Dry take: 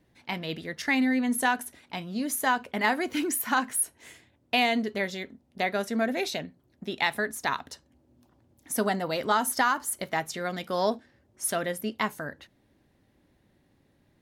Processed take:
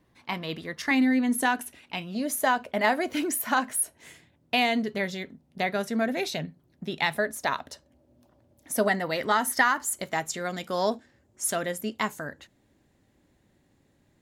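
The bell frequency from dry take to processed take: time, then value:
bell +10 dB 0.3 oct
1100 Hz
from 0.91 s 310 Hz
from 1.61 s 2700 Hz
from 2.15 s 620 Hz
from 3.97 s 160 Hz
from 7.16 s 600 Hz
from 8.88 s 1900 Hz
from 9.82 s 7200 Hz

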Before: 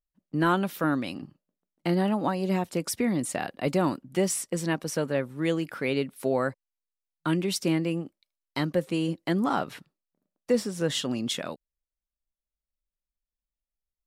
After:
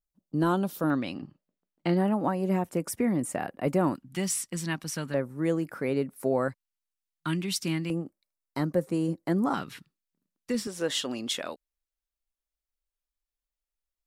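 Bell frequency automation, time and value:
bell -13.5 dB 1.2 oct
2100 Hz
from 0.9 s 13000 Hz
from 1.97 s 4000 Hz
from 3.95 s 500 Hz
from 5.14 s 3300 Hz
from 6.48 s 520 Hz
from 7.9 s 3100 Hz
from 9.54 s 630 Hz
from 10.67 s 140 Hz

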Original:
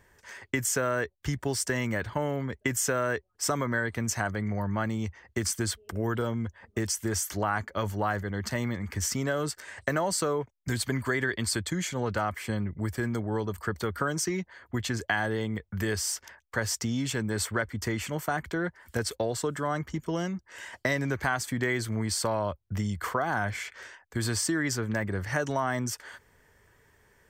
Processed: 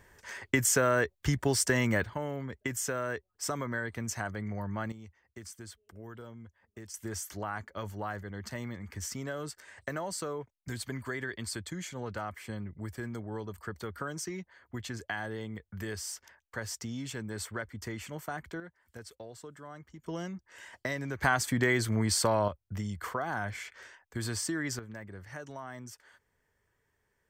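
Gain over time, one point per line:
+2 dB
from 2.04 s -6 dB
from 4.92 s -17 dB
from 6.94 s -8.5 dB
from 18.6 s -17 dB
from 20.04 s -7 dB
from 21.22 s +1.5 dB
from 22.48 s -5.5 dB
from 24.79 s -14.5 dB

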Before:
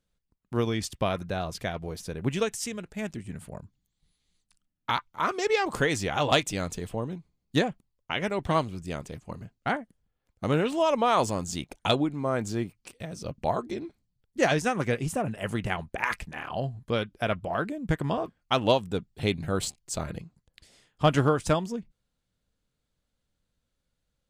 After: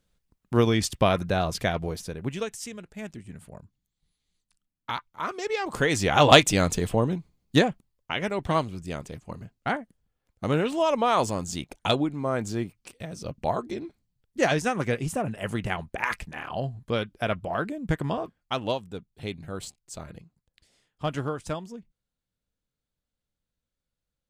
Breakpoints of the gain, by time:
1.82 s +6 dB
2.33 s -4 dB
5.57 s -4 dB
6.21 s +8.5 dB
7.04 s +8.5 dB
8.16 s +0.5 dB
18.03 s +0.5 dB
18.9 s -7.5 dB

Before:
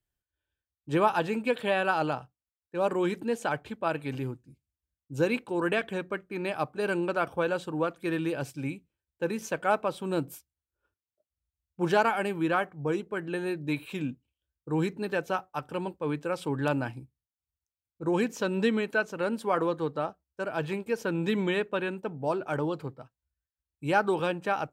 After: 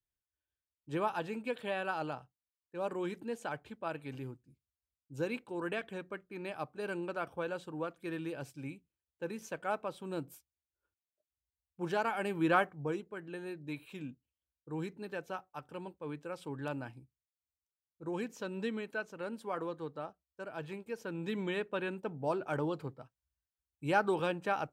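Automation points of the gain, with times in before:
11.99 s -9.5 dB
12.57 s -0.5 dB
13.12 s -11 dB
21.05 s -11 dB
22 s -4.5 dB

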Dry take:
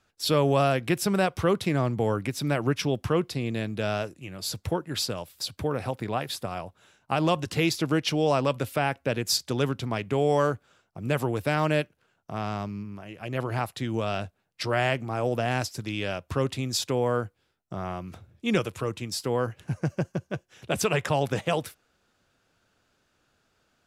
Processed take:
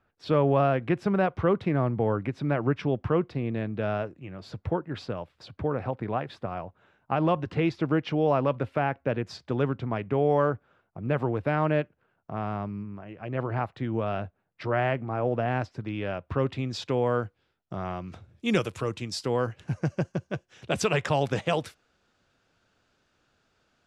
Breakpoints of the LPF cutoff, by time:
16.06 s 1800 Hz
17.22 s 4300 Hz
17.96 s 4300 Hz
18.5 s 11000 Hz
19.07 s 6700 Hz

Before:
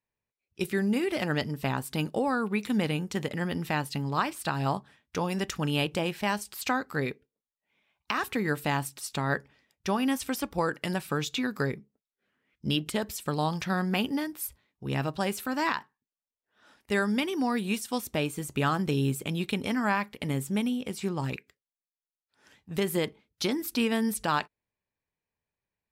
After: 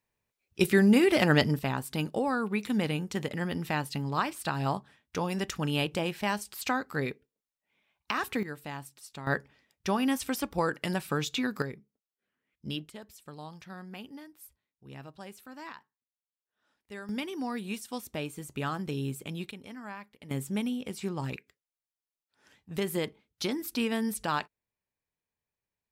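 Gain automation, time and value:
+6 dB
from 1.59 s -1.5 dB
from 8.43 s -11.5 dB
from 9.27 s -0.5 dB
from 11.62 s -8 dB
from 12.86 s -16 dB
from 17.09 s -6.5 dB
from 19.51 s -15.5 dB
from 20.31 s -3 dB

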